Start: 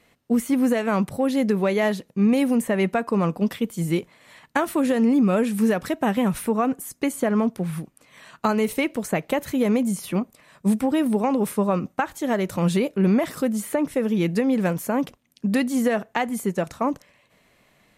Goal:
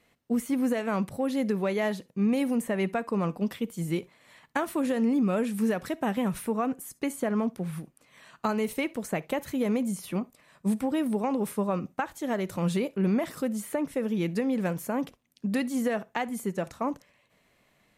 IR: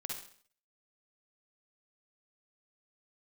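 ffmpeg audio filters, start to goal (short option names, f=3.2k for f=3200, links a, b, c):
-filter_complex "[0:a]asplit=2[a][b];[1:a]atrim=start_sample=2205,atrim=end_sample=3528[c];[b][c]afir=irnorm=-1:irlink=0,volume=-17.5dB[d];[a][d]amix=inputs=2:normalize=0,volume=-7dB"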